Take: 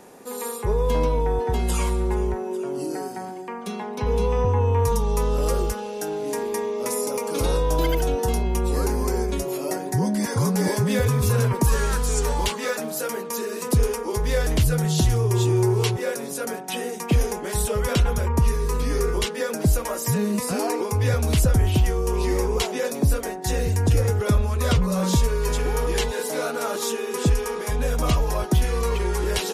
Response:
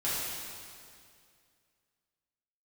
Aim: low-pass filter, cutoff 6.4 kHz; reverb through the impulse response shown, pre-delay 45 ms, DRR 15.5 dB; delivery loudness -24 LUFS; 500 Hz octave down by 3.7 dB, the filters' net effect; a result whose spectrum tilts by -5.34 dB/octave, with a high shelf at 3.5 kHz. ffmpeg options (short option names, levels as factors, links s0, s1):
-filter_complex "[0:a]lowpass=6400,equalizer=f=500:t=o:g=-4.5,highshelf=f=3500:g=3,asplit=2[s0][s1];[1:a]atrim=start_sample=2205,adelay=45[s2];[s1][s2]afir=irnorm=-1:irlink=0,volume=0.0668[s3];[s0][s3]amix=inputs=2:normalize=0,volume=1.06"